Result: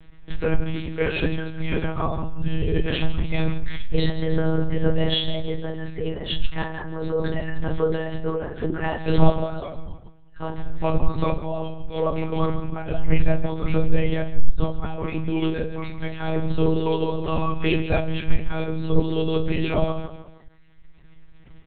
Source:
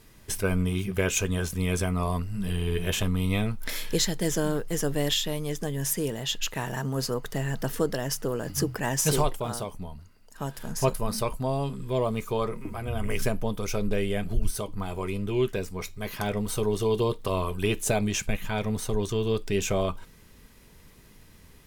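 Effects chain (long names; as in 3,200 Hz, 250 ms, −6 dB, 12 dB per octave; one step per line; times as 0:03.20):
reverb reduction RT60 1.7 s
repeating echo 153 ms, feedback 39%, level −11.5 dB
rectangular room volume 150 cubic metres, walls furnished, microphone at 4 metres
one-pitch LPC vocoder at 8 kHz 160 Hz
level −6 dB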